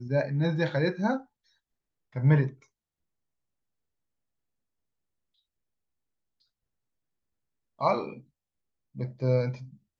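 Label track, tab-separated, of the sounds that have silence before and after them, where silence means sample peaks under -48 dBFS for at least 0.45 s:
2.130000	2.630000	sound
7.790000	8.210000	sound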